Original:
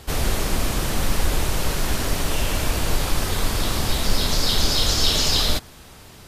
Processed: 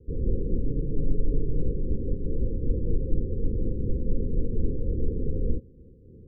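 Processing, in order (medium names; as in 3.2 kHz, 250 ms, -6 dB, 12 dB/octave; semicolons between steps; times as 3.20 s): Chebyshev low-pass 530 Hz, order 10; 0.64–1.62 s: comb 7 ms, depth 59%; random flutter of the level, depth 55%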